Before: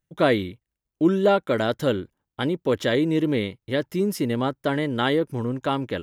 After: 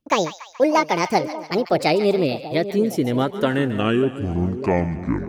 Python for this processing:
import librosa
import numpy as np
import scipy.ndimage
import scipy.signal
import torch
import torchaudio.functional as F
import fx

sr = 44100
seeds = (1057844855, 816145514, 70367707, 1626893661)

y = fx.speed_glide(x, sr, from_pct=176, to_pct=52)
y = fx.rotary_switch(y, sr, hz=7.5, then_hz=0.9, switch_at_s=1.57)
y = fx.echo_split(y, sr, split_hz=860.0, low_ms=596, high_ms=142, feedback_pct=52, wet_db=-12.0)
y = y * 10.0 ** (5.0 / 20.0)